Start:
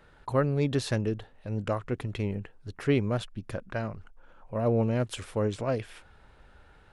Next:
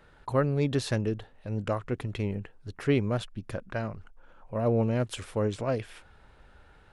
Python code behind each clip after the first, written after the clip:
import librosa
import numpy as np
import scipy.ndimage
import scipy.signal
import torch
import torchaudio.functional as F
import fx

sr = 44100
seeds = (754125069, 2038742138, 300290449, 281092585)

y = x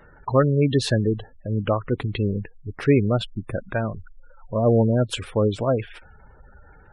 y = fx.dynamic_eq(x, sr, hz=3100.0, q=0.89, threshold_db=-46.0, ratio=4.0, max_db=3)
y = fx.spec_gate(y, sr, threshold_db=-20, keep='strong')
y = F.gain(torch.from_numpy(y), 7.5).numpy()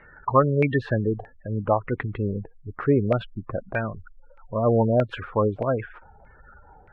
y = fx.filter_lfo_lowpass(x, sr, shape='saw_down', hz=1.6, low_hz=670.0, high_hz=2300.0, q=4.4)
y = F.gain(torch.from_numpy(y), -3.5).numpy()